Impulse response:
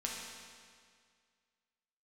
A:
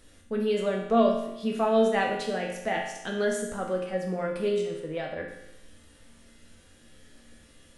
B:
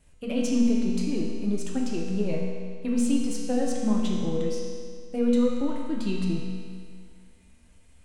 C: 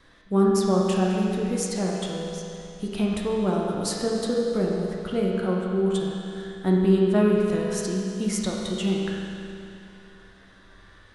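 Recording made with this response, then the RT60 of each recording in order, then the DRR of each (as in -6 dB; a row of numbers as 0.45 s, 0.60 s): B; 0.90 s, 2.0 s, 2.7 s; -1.5 dB, -3.0 dB, -3.0 dB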